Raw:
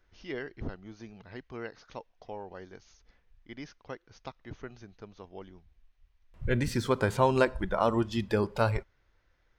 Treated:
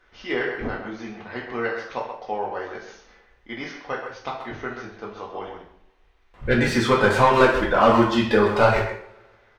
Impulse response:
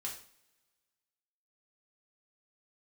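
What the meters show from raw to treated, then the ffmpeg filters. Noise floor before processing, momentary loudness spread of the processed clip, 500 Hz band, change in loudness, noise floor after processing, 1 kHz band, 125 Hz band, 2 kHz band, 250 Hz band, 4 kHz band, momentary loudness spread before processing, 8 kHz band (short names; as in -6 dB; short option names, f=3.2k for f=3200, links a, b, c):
-70 dBFS, 19 LU, +10.0 dB, +8.5 dB, -59 dBFS, +12.0 dB, +4.5 dB, +13.5 dB, +9.5 dB, +12.0 dB, 21 LU, +7.5 dB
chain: -filter_complex "[0:a]asplit=2[a][b];[b]highpass=f=720:p=1,volume=17dB,asoftclip=type=tanh:threshold=-10.5dB[c];[a][c]amix=inputs=2:normalize=0,lowpass=f=1.6k:p=1,volume=-6dB,asplit=2[d][e];[e]adelay=130,highpass=300,lowpass=3.4k,asoftclip=type=hard:threshold=-20.5dB,volume=-7dB[f];[d][f]amix=inputs=2:normalize=0[g];[1:a]atrim=start_sample=2205[h];[g][h]afir=irnorm=-1:irlink=0,volume=8.5dB"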